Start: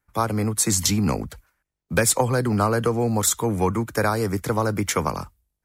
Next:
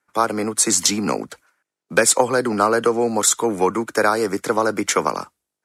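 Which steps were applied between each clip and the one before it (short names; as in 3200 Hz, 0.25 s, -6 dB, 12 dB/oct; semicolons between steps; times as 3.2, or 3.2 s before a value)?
Chebyshev band-pass 320–8800 Hz, order 2; bell 1400 Hz +3.5 dB 0.31 oct; gain +5 dB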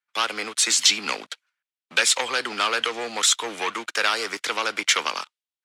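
sample leveller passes 3; band-pass 3200 Hz, Q 1.8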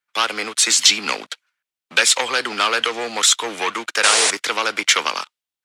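painted sound noise, 4.03–4.31, 390–10000 Hz -21 dBFS; gain +4.5 dB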